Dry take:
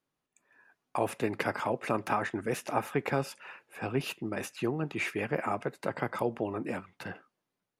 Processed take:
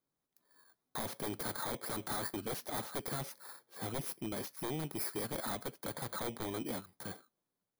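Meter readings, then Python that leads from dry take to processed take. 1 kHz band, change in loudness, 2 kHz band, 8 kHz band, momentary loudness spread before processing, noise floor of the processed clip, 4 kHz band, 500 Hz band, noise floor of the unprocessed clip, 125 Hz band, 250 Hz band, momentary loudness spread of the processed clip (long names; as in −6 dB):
−9.0 dB, −6.0 dB, −10.5 dB, +4.0 dB, 9 LU, below −85 dBFS, 0.0 dB, −10.0 dB, below −85 dBFS, −7.0 dB, −7.5 dB, 8 LU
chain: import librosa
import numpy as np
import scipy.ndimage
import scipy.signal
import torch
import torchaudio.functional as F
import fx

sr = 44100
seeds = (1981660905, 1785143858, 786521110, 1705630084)

y = fx.bit_reversed(x, sr, seeds[0], block=16)
y = 10.0 ** (-28.0 / 20.0) * (np.abs((y / 10.0 ** (-28.0 / 20.0) + 3.0) % 4.0 - 2.0) - 1.0)
y = y * 10.0 ** (-3.5 / 20.0)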